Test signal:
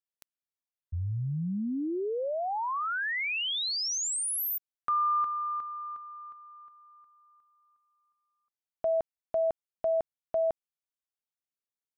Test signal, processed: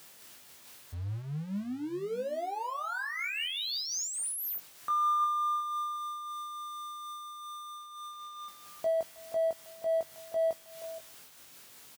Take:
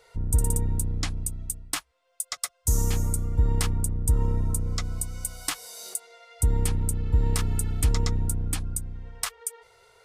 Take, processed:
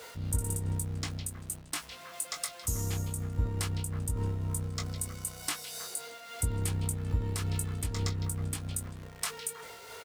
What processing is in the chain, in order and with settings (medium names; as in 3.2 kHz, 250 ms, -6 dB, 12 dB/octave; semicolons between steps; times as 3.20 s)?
jump at every zero crossing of -37 dBFS; high-pass 71 Hz; doubling 20 ms -6 dB; on a send: repeats whose band climbs or falls 158 ms, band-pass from 3.4 kHz, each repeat -1.4 oct, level -6 dB; on the sum: random flutter of the level, depth 55%; trim -4 dB